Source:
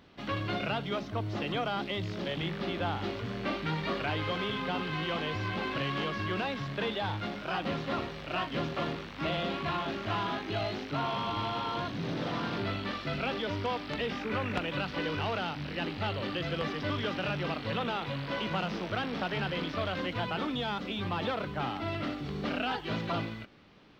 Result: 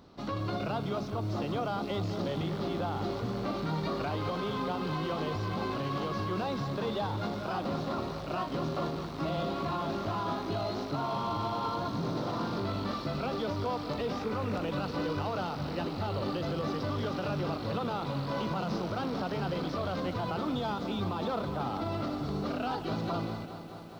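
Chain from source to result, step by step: high-order bell 2.3 kHz -10.5 dB 1.3 oct; peak limiter -28 dBFS, peak gain reduction 8.5 dB; bit-crushed delay 209 ms, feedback 80%, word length 10-bit, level -12 dB; trim +3 dB

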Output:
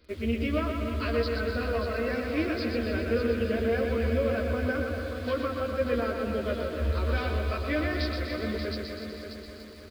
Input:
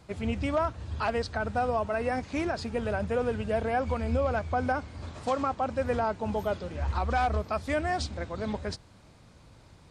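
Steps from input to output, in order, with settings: doubling 13 ms -3.5 dB; on a send: multi-head delay 292 ms, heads first and second, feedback 50%, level -10 dB; on the sum: resampled via 11.025 kHz; static phaser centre 340 Hz, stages 4; in parallel at -5 dB: bit crusher 8-bit; on the sum: feedback delay 123 ms, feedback 59%, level -5.5 dB; trim -3 dB

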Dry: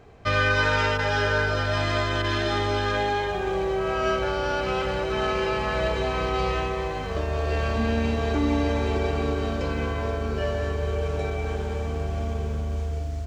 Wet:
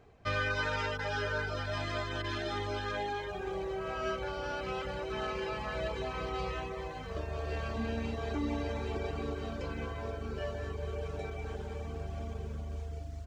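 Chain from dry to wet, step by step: reverb removal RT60 0.66 s; trim -9 dB

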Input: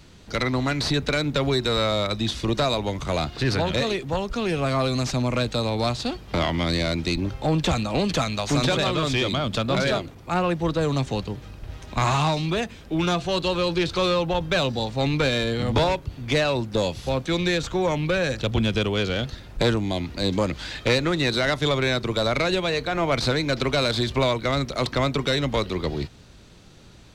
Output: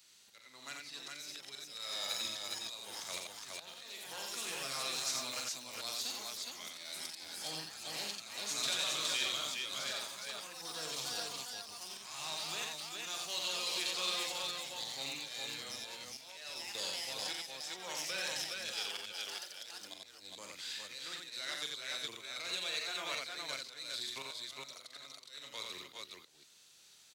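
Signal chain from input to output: differentiator; ever faster or slower copies 583 ms, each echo +5 st, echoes 3, each echo -6 dB; 18.71–19.81 s: tone controls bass -11 dB, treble +2 dB; slow attack 444 ms; multi-tap echo 44/88/394/414 ms -7/-3.5/-12/-3 dB; trim -3.5 dB

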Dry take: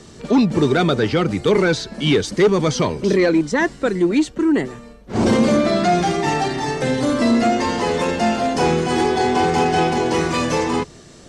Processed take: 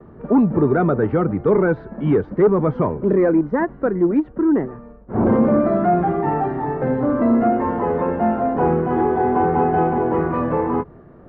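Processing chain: gate with hold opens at -35 dBFS; low-pass 1.4 kHz 24 dB/octave; endings held to a fixed fall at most 440 dB/s

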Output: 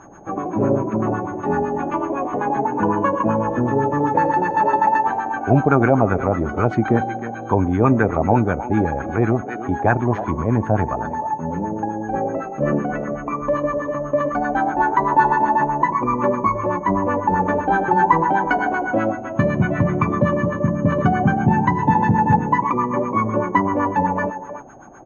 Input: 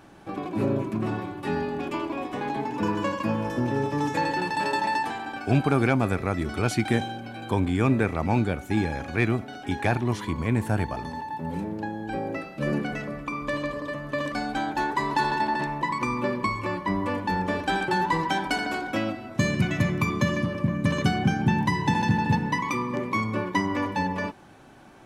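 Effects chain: speakerphone echo 310 ms, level -10 dB; whistle 6.5 kHz -30 dBFS; LFO low-pass sine 7.9 Hz 600–1500 Hz; trim +5 dB

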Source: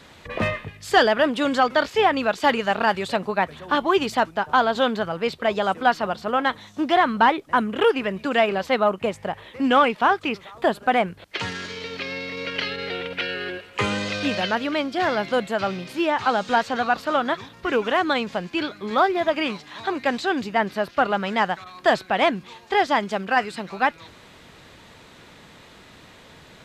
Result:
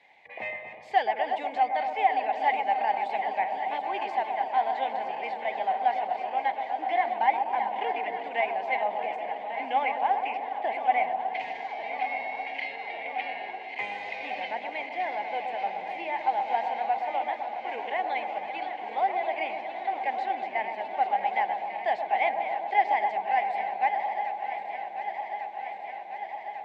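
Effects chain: backward echo that repeats 573 ms, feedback 84%, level -10 dB; two resonant band-passes 1.3 kHz, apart 1.4 oct; bucket-brigade echo 125 ms, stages 1024, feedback 74%, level -6.5 dB; trim -1 dB

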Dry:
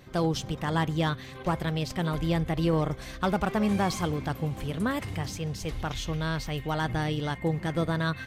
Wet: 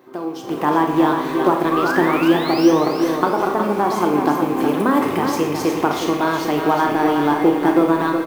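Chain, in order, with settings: rattle on loud lows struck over -31 dBFS, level -36 dBFS; painted sound rise, 1.71–2.72 s, 1.1–6.4 kHz -35 dBFS; compression 6:1, threshold -32 dBFS, peak gain reduction 11.5 dB; in parallel at -10.5 dB: companded quantiser 4-bit; on the sum: ten-band graphic EQ 500 Hz -6 dB, 1 kHz +9 dB, 8 kHz -6 dB; level rider gain up to 15.5 dB; resonant high-pass 350 Hz, resonance Q 3.7; peaking EQ 3.1 kHz -8.5 dB 2.7 oct; speakerphone echo 170 ms, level -14 dB; Schroeder reverb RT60 0.68 s, combs from 27 ms, DRR 4 dB; bit-crushed delay 366 ms, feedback 35%, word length 7-bit, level -6 dB

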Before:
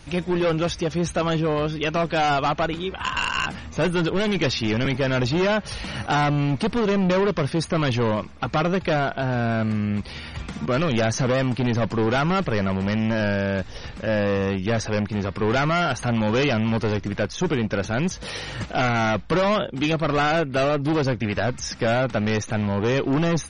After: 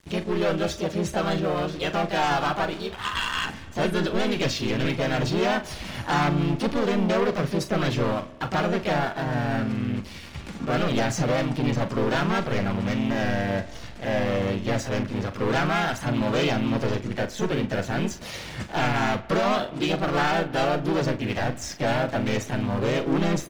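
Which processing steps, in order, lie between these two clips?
harmony voices +3 st -2 dB, +7 st -15 dB; crossover distortion -40.5 dBFS; doubling 41 ms -11 dB; spring tank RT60 1.5 s, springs 44 ms, DRR 17 dB; trim -4.5 dB

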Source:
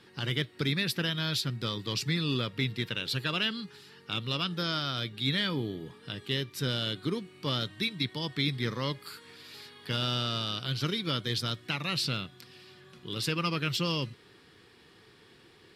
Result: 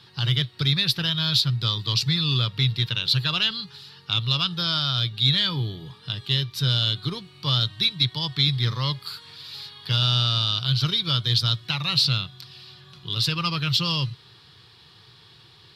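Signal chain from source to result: Chebyshev shaper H 2 -20 dB, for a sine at -14.5 dBFS; graphic EQ 125/250/500/1000/2000/4000/8000 Hz +10/-11/-6/+4/-6/+11/-5 dB; trim +4 dB

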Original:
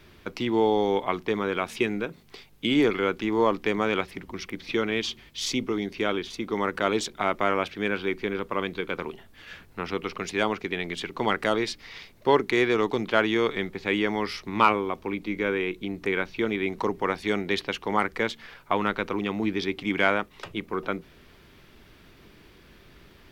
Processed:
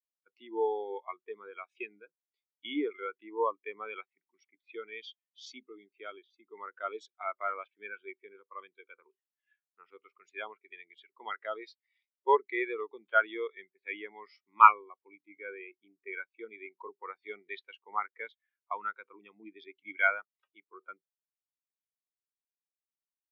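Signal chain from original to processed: high-pass 1.2 kHz 6 dB/octave; spectral contrast expander 2.5:1; trim +6 dB

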